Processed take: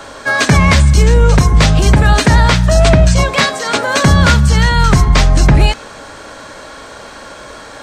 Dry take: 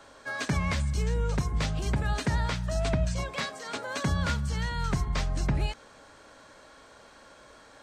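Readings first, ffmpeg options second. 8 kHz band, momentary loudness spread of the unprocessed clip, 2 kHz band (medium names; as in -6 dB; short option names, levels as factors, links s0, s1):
+20.5 dB, 6 LU, +20.0 dB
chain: -af "acontrast=72,bandreject=f=259.1:t=h:w=4,bandreject=f=518.2:t=h:w=4,bandreject=f=777.3:t=h:w=4,bandreject=f=1036.4:t=h:w=4,bandreject=f=1295.5:t=h:w=4,bandreject=f=1554.6:t=h:w=4,bandreject=f=1813.7:t=h:w=4,bandreject=f=2072.8:t=h:w=4,bandreject=f=2331.9:t=h:w=4,bandreject=f=2591:t=h:w=4,bandreject=f=2850.1:t=h:w=4,bandreject=f=3109.2:t=h:w=4,bandreject=f=3368.3:t=h:w=4,bandreject=f=3627.4:t=h:w=4,bandreject=f=3886.5:t=h:w=4,bandreject=f=4145.6:t=h:w=4,bandreject=f=4404.7:t=h:w=4,bandreject=f=4663.8:t=h:w=4,bandreject=f=4922.9:t=h:w=4,bandreject=f=5182:t=h:w=4,bandreject=f=5441.1:t=h:w=4,bandreject=f=5700.2:t=h:w=4,bandreject=f=5959.3:t=h:w=4,bandreject=f=6218.4:t=h:w=4,bandreject=f=6477.5:t=h:w=4,bandreject=f=6736.6:t=h:w=4,bandreject=f=6995.7:t=h:w=4,bandreject=f=7254.8:t=h:w=4,apsyclip=6.31,volume=0.794"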